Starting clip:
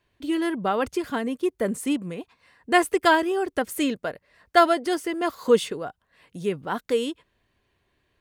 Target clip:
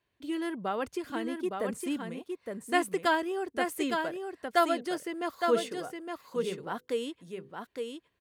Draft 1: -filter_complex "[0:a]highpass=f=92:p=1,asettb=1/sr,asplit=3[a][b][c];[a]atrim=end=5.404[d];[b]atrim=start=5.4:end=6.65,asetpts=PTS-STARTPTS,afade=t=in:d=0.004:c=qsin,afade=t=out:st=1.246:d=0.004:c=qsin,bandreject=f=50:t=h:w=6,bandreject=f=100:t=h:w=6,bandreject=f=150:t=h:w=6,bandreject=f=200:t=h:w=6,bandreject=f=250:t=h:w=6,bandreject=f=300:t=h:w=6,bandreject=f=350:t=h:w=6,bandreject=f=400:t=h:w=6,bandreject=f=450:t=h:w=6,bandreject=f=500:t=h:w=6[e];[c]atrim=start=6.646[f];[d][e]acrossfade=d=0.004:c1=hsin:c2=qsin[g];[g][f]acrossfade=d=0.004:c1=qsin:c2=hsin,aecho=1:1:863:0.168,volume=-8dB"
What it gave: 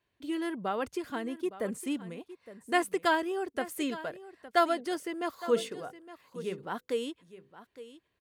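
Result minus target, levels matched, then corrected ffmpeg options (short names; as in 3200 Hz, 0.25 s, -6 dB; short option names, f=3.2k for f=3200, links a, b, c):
echo-to-direct -10.5 dB
-filter_complex "[0:a]highpass=f=92:p=1,asettb=1/sr,asplit=3[a][b][c];[a]atrim=end=5.404[d];[b]atrim=start=5.4:end=6.65,asetpts=PTS-STARTPTS,afade=t=in:d=0.004:c=qsin,afade=t=out:st=1.246:d=0.004:c=qsin,bandreject=f=50:t=h:w=6,bandreject=f=100:t=h:w=6,bandreject=f=150:t=h:w=6,bandreject=f=200:t=h:w=6,bandreject=f=250:t=h:w=6,bandreject=f=300:t=h:w=6,bandreject=f=350:t=h:w=6,bandreject=f=400:t=h:w=6,bandreject=f=450:t=h:w=6,bandreject=f=500:t=h:w=6[e];[c]atrim=start=6.646[f];[d][e]acrossfade=d=0.004:c1=hsin:c2=qsin[g];[g][f]acrossfade=d=0.004:c1=qsin:c2=hsin,aecho=1:1:863:0.562,volume=-8dB"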